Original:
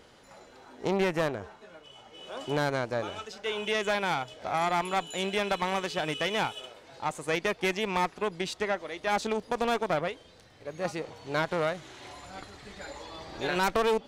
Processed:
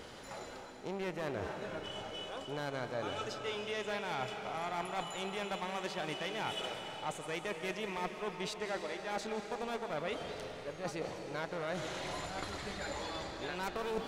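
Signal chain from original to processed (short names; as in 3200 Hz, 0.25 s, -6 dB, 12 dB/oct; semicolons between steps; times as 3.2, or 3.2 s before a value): reverse; compressor 5:1, threshold -44 dBFS, peak gain reduction 20 dB; reverse; digital reverb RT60 3.9 s, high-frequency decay 0.95×, pre-delay 0.115 s, DRR 5 dB; gain +6 dB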